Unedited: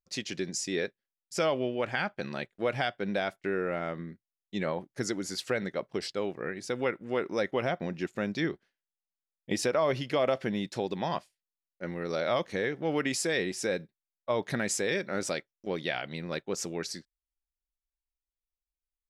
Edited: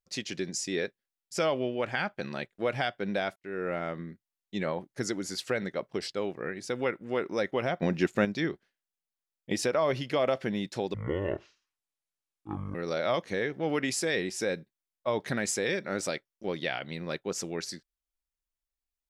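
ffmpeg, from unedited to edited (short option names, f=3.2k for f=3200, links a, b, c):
-filter_complex "[0:a]asplit=6[a][b][c][d][e][f];[a]atrim=end=3.36,asetpts=PTS-STARTPTS,afade=t=out:st=3.356:d=0.004:c=hsin[g];[b]atrim=start=3.36:end=7.822,asetpts=PTS-STARTPTS,afade=t=in:d=0.33[h];[c]atrim=start=7.818:end=8.252,asetpts=PTS-STARTPTS,volume=7dB[i];[d]atrim=start=8.248:end=10.944[j];[e]atrim=start=10.94:end=11.97,asetpts=PTS-STARTPTS,asetrate=25137,aresample=44100,atrim=end_sample=79689,asetpts=PTS-STARTPTS[k];[f]atrim=start=11.966[l];[g][h]concat=n=2:v=0:a=1[m];[m][i]acrossfade=d=0.004:c1=hsin:c2=hsin[n];[n][j]acrossfade=d=0.004:c1=hsin:c2=hsin[o];[o][k]acrossfade=d=0.004:c1=hsin:c2=hsin[p];[p][l]acrossfade=d=0.004:c1=hsin:c2=hsin"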